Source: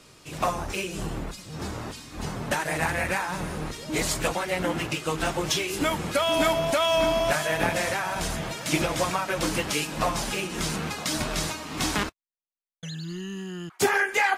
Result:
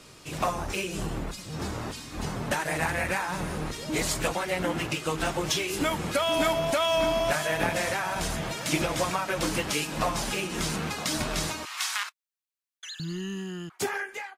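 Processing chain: fade out at the end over 1.10 s; 11.65–13.00 s: high-pass 1.1 kHz 24 dB/octave; in parallel at 0 dB: compression, threshold -33 dBFS, peak gain reduction 13.5 dB; on the sum: trim -4 dB

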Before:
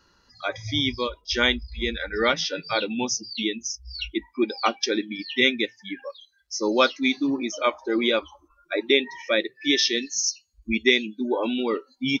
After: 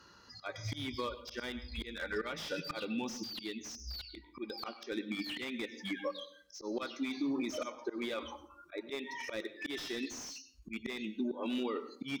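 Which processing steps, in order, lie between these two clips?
high-pass 74 Hz 12 dB/octave; peaking EQ 1.2 kHz +3 dB 0.4 oct; slow attack 474 ms; peak limiter -25 dBFS, peak gain reduction 11 dB; compression 2:1, threshold -38 dBFS, peak gain reduction 6 dB; Chebyshev shaper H 3 -28 dB, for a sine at -26 dBFS; on a send at -14 dB: reverberation RT60 0.55 s, pre-delay 96 ms; on the sum: slew-rate limiter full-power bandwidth 23 Hz; trim +3 dB

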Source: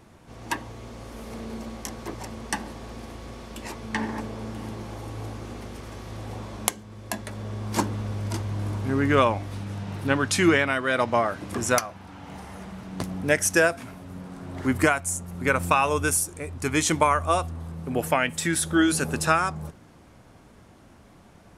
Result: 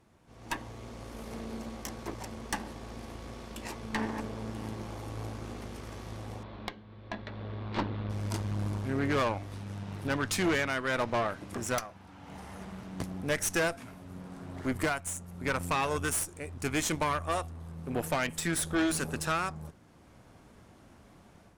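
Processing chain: 6.43–8.10 s: Chebyshev low-pass 4 kHz, order 4; level rider gain up to 8 dB; valve stage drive 16 dB, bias 0.75; trim -7.5 dB

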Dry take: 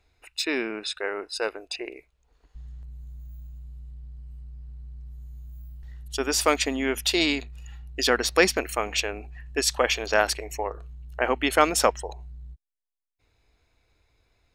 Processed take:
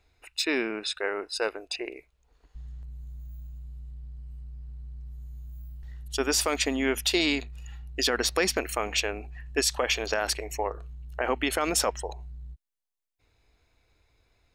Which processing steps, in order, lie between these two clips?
peak limiter -13.5 dBFS, peak gain reduction 11 dB

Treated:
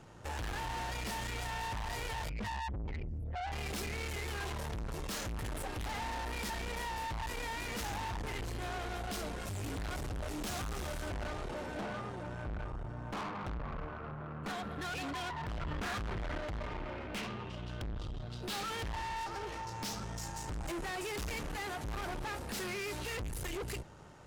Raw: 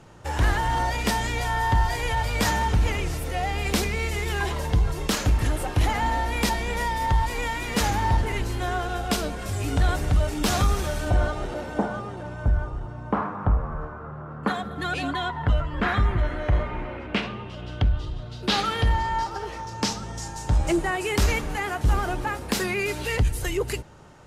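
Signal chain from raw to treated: 2.29–3.52 s: spectral contrast enhancement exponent 2.4; valve stage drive 35 dB, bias 0.65; 15.61–16.38 s: level flattener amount 100%; trim -2 dB

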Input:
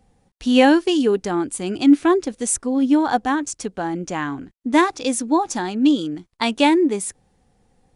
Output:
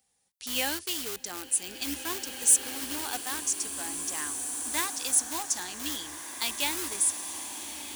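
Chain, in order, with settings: octave divider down 2 oct, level -6 dB; in parallel at -11.5 dB: integer overflow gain 15.5 dB; on the sum: high-pass 53 Hz; pre-emphasis filter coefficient 0.97; swelling reverb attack 2100 ms, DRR 5.5 dB

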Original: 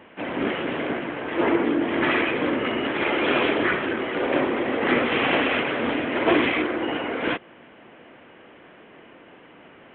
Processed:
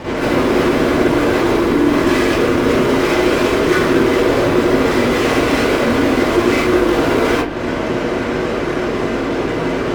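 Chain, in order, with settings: low-pass 1.4 kHz 6 dB/octave; compression 2.5:1, threshold -38 dBFS, peak gain reduction 14.5 dB; fuzz box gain 49 dB, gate -57 dBFS; bass shelf 220 Hz +3.5 dB; hum 50 Hz, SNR 20 dB; reverberation RT60 0.40 s, pre-delay 38 ms, DRR -11 dB; attacks held to a fixed rise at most 180 dB/s; trim -13.5 dB

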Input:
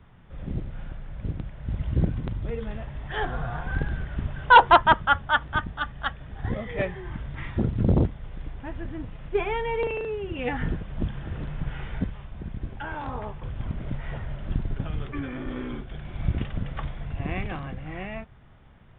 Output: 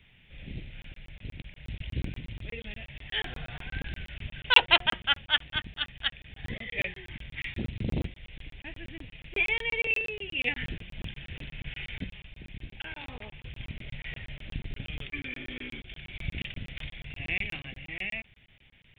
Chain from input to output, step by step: resonant high shelf 1.7 kHz +12.5 dB, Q 3; de-hum 178.7 Hz, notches 4; crackling interface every 0.12 s, samples 1024, zero, from 0.82 s; trim -9 dB

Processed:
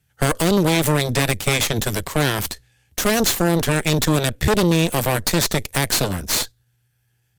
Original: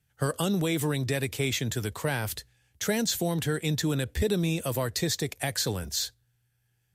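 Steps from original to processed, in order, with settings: Chebyshev shaper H 5 -30 dB, 7 -33 dB, 8 -11 dB, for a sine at -13 dBFS; tempo 0.94×; trim +6.5 dB

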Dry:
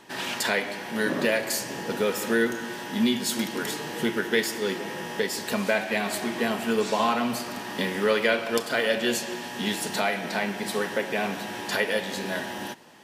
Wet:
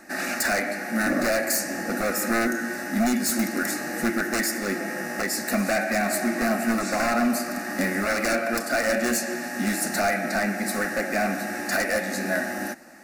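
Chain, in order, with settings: wavefolder -21.5 dBFS; static phaser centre 650 Hz, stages 8; trim +7 dB

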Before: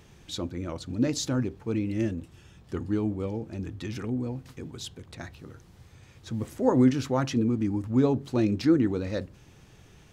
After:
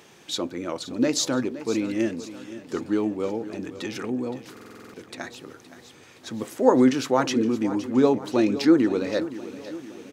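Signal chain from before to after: high-pass 300 Hz 12 dB/octave; feedback delay 518 ms, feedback 54%, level -14.5 dB; buffer glitch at 4.52 s, samples 2048, times 8; trim +7 dB

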